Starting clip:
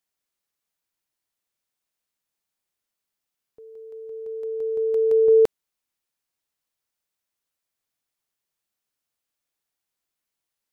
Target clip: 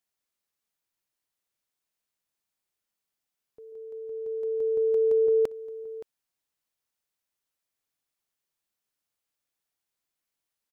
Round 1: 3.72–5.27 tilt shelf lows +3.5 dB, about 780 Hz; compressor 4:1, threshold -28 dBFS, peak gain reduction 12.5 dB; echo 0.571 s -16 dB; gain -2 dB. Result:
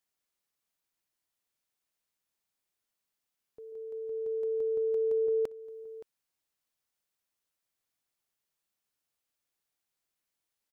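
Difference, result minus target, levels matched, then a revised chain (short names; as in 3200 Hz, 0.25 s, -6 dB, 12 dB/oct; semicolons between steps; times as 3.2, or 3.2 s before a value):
compressor: peak gain reduction +6.5 dB
3.72–5.27 tilt shelf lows +3.5 dB, about 780 Hz; compressor 4:1, threshold -19.5 dBFS, peak gain reduction 6 dB; echo 0.571 s -16 dB; gain -2 dB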